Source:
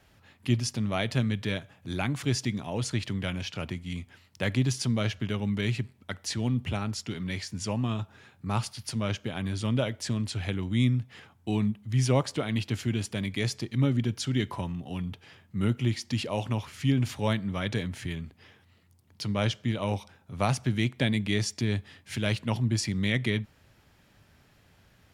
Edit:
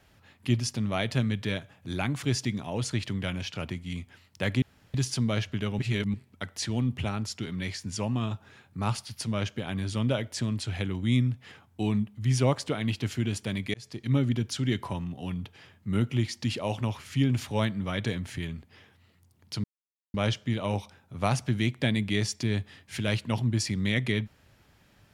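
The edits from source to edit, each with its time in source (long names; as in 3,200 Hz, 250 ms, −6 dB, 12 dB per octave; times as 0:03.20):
0:04.62: splice in room tone 0.32 s
0:05.47–0:05.82: reverse
0:13.42–0:13.78: fade in
0:19.32: splice in silence 0.50 s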